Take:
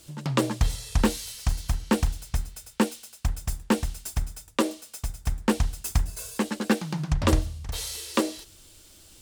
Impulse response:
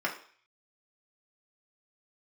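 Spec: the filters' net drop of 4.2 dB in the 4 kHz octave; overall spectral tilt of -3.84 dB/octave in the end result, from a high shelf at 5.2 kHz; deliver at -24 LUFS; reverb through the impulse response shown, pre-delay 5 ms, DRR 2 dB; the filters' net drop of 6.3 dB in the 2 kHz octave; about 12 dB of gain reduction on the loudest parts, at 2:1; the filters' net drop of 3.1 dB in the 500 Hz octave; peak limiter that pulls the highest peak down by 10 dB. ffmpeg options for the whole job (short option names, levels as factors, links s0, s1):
-filter_complex "[0:a]equalizer=f=500:t=o:g=-3.5,equalizer=f=2000:t=o:g=-7.5,equalizer=f=4000:t=o:g=-5.5,highshelf=f=5200:g=5,acompressor=threshold=0.01:ratio=2,alimiter=level_in=1.68:limit=0.0631:level=0:latency=1,volume=0.596,asplit=2[s0][s1];[1:a]atrim=start_sample=2205,adelay=5[s2];[s1][s2]afir=irnorm=-1:irlink=0,volume=0.299[s3];[s0][s3]amix=inputs=2:normalize=0,volume=7.08"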